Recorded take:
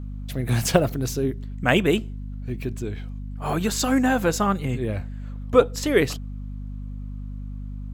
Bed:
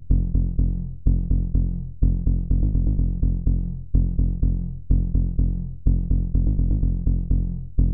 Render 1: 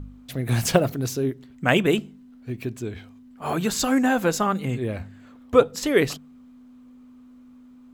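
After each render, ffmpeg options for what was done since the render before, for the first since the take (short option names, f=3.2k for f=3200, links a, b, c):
-af "bandreject=f=50:t=h:w=4,bandreject=f=100:t=h:w=4,bandreject=f=150:t=h:w=4,bandreject=f=200:t=h:w=4"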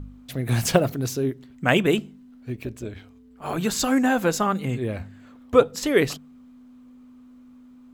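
-filter_complex "[0:a]asplit=3[a][b][c];[a]afade=t=out:st=2.54:d=0.02[d];[b]tremolo=f=190:d=0.621,afade=t=in:st=2.54:d=0.02,afade=t=out:st=3.57:d=0.02[e];[c]afade=t=in:st=3.57:d=0.02[f];[d][e][f]amix=inputs=3:normalize=0"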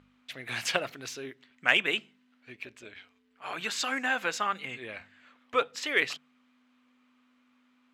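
-filter_complex "[0:a]bandpass=f=2.4k:t=q:w=1.3:csg=0,asplit=2[a][b];[b]asoftclip=type=hard:threshold=-17.5dB,volume=-9dB[c];[a][c]amix=inputs=2:normalize=0"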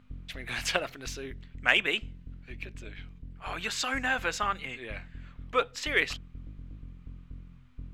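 -filter_complex "[1:a]volume=-24dB[a];[0:a][a]amix=inputs=2:normalize=0"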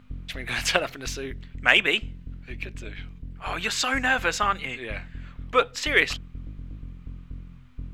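-af "volume=6dB,alimiter=limit=-2dB:level=0:latency=1"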